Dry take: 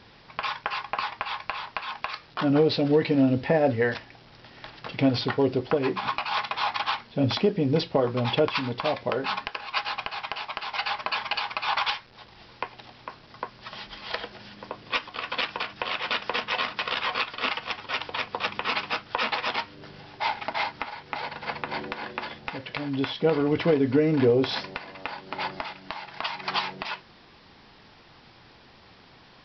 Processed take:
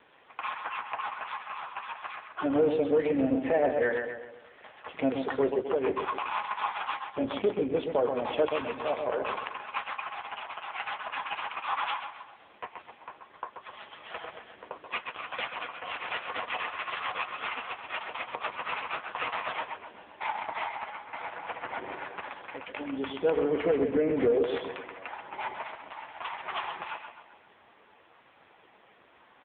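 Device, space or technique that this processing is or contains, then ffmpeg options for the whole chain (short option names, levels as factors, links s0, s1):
telephone: -filter_complex "[0:a]asplit=3[s0][s1][s2];[s0]afade=t=out:st=6.05:d=0.02[s3];[s1]adynamicequalizer=threshold=0.00141:dfrequency=120:dqfactor=3.4:tfrequency=120:tqfactor=3.4:attack=5:release=100:ratio=0.375:range=2:mode=cutabove:tftype=bell,afade=t=in:st=6.05:d=0.02,afade=t=out:st=6.8:d=0.02[s4];[s2]afade=t=in:st=6.8:d=0.02[s5];[s3][s4][s5]amix=inputs=3:normalize=0,highpass=350,lowpass=3000,asplit=2[s6][s7];[s7]adelay=130,lowpass=f=3700:p=1,volume=0.501,asplit=2[s8][s9];[s9]adelay=130,lowpass=f=3700:p=1,volume=0.47,asplit=2[s10][s11];[s11]adelay=130,lowpass=f=3700:p=1,volume=0.47,asplit=2[s12][s13];[s13]adelay=130,lowpass=f=3700:p=1,volume=0.47,asplit=2[s14][s15];[s15]adelay=130,lowpass=f=3700:p=1,volume=0.47,asplit=2[s16][s17];[s17]adelay=130,lowpass=f=3700:p=1,volume=0.47[s18];[s6][s8][s10][s12][s14][s16][s18]amix=inputs=7:normalize=0,asoftclip=type=tanh:threshold=0.178" -ar 8000 -c:a libopencore_amrnb -b:a 5900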